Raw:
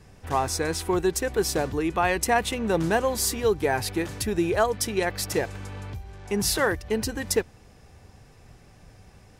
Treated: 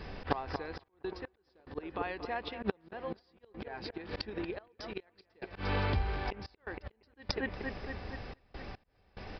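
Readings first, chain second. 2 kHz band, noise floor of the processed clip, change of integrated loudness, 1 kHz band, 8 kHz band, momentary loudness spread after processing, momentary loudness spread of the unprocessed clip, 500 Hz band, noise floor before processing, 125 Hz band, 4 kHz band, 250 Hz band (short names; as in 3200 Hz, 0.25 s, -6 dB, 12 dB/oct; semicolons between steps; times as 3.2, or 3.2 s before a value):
-12.0 dB, -72 dBFS, -14.0 dB, -12.5 dB, under -35 dB, 14 LU, 7 LU, -15.0 dB, -53 dBFS, -7.5 dB, -12.5 dB, -13.5 dB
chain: bell 120 Hz -9.5 dB 1.2 oct; flipped gate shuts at -19 dBFS, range -25 dB; on a send: analogue delay 0.233 s, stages 4096, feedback 65%, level -11.5 dB; on the sum: downsampling 11025 Hz; auto swell 0.15 s; step gate "xxxx.x..x" 72 bpm -24 dB; gain +10 dB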